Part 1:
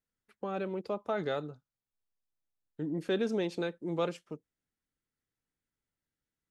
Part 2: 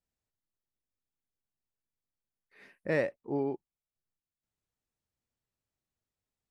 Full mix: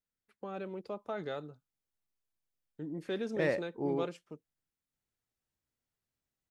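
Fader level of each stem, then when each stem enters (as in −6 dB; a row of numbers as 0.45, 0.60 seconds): −5.5, −2.0 decibels; 0.00, 0.50 seconds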